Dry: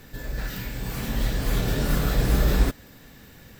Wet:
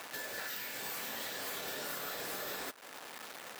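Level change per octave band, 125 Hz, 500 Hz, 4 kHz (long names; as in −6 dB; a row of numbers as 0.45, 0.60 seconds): −35.0, −12.5, −6.0 decibels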